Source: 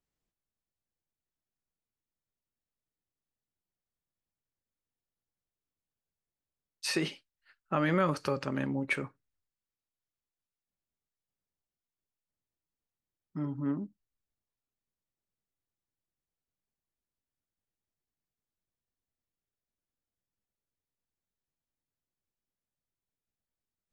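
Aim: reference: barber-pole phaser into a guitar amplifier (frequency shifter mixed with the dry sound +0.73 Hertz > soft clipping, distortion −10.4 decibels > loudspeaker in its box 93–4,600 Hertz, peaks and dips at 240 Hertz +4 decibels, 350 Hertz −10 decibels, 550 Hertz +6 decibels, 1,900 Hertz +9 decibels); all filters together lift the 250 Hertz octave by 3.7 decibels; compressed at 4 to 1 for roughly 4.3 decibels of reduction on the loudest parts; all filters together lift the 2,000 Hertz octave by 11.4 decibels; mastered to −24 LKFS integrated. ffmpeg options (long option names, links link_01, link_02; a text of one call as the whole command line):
ffmpeg -i in.wav -filter_complex "[0:a]equalizer=frequency=250:width_type=o:gain=6,equalizer=frequency=2000:width_type=o:gain=7.5,acompressor=threshold=-26dB:ratio=4,asplit=2[link_01][link_02];[link_02]afreqshift=0.73[link_03];[link_01][link_03]amix=inputs=2:normalize=1,asoftclip=threshold=-32.5dB,highpass=93,equalizer=frequency=240:width_type=q:width=4:gain=4,equalizer=frequency=350:width_type=q:width=4:gain=-10,equalizer=frequency=550:width_type=q:width=4:gain=6,equalizer=frequency=1900:width_type=q:width=4:gain=9,lowpass=frequency=4600:width=0.5412,lowpass=frequency=4600:width=1.3066,volume=14dB" out.wav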